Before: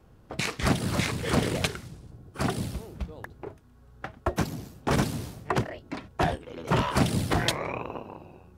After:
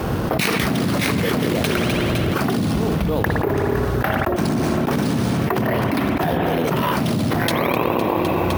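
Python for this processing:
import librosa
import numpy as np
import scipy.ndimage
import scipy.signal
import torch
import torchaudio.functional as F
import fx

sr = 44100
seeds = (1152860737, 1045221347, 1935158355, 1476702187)

p1 = fx.highpass(x, sr, hz=140.0, slope=6)
p2 = fx.dynamic_eq(p1, sr, hz=230.0, q=0.94, threshold_db=-42.0, ratio=4.0, max_db=6)
p3 = np.repeat(scipy.signal.resample_poly(p2, 1, 3), 3)[:len(p2)]
p4 = p3 + fx.echo_feedback(p3, sr, ms=255, feedback_pct=50, wet_db=-21.5, dry=0)
p5 = fx.rev_spring(p4, sr, rt60_s=1.6, pass_ms=(56,), chirp_ms=70, drr_db=11.0)
p6 = fx.env_flatten(p5, sr, amount_pct=100)
y = p6 * 10.0 ** (-3.0 / 20.0)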